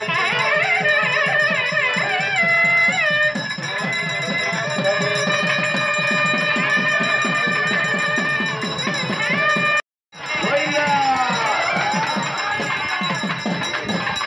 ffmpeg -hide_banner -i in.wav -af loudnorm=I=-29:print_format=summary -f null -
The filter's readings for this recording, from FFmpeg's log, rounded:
Input Integrated:    -18.5 LUFS
Input True Peak:      -6.5 dBTP
Input LRA:             3.8 LU
Input Threshold:     -28.5 LUFS